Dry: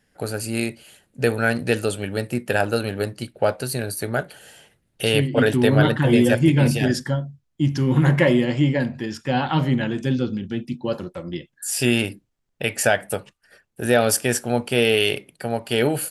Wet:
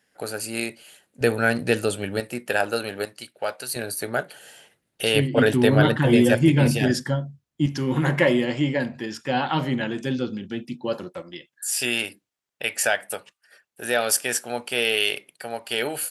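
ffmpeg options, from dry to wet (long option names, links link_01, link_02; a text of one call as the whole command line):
ffmpeg -i in.wav -af "asetnsamples=nb_out_samples=441:pad=0,asendcmd='1.21 highpass f 120;2.2 highpass f 500;3.05 highpass f 1400;3.76 highpass f 340;5.16 highpass f 97;7.66 highpass f 290;11.22 highpass f 980',highpass=frequency=460:poles=1" out.wav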